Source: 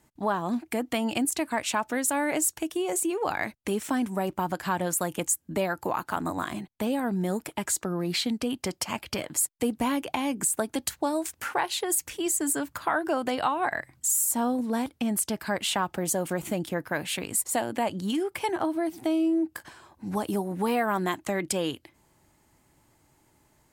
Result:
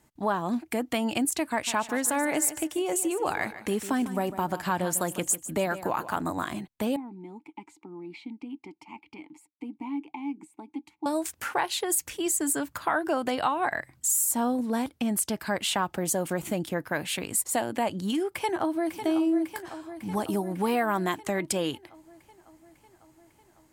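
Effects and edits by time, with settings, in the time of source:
0:01.51–0:06.22: repeating echo 150 ms, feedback 35%, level −13.5 dB
0:06.96–0:11.06: formant filter u
0:18.28–0:19.01: delay throw 550 ms, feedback 70%, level −9.5 dB

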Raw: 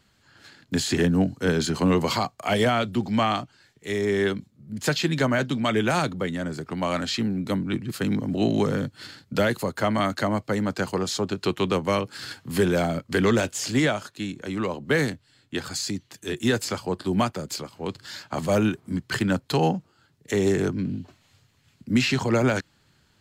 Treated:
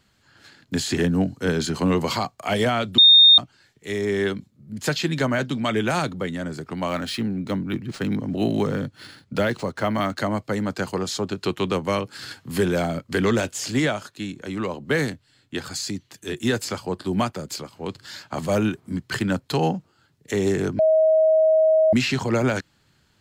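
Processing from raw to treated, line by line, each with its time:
0:02.98–0:03.38: beep over 3,670 Hz −8 dBFS
0:06.88–0:10.18: linearly interpolated sample-rate reduction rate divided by 3×
0:20.79–0:21.93: beep over 634 Hz −13.5 dBFS

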